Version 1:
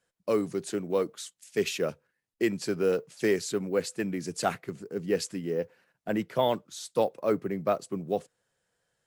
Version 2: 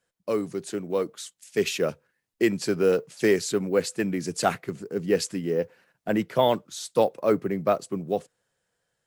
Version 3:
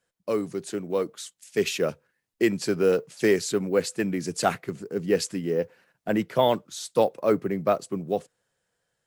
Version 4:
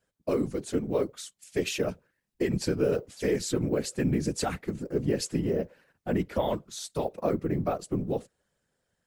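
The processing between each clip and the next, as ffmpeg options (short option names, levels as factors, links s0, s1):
-af "dynaudnorm=f=310:g=9:m=1.68"
-af anull
-af "lowshelf=f=290:g=8.5,alimiter=limit=0.168:level=0:latency=1:release=95,afftfilt=real='hypot(re,im)*cos(2*PI*random(0))':imag='hypot(re,im)*sin(2*PI*random(1))':win_size=512:overlap=0.75,volume=1.5"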